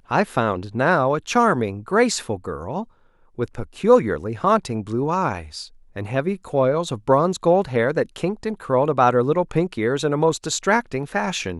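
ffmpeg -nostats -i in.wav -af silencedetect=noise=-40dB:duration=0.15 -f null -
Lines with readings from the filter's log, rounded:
silence_start: 2.84
silence_end: 3.38 | silence_duration: 0.54
silence_start: 5.68
silence_end: 5.96 | silence_duration: 0.28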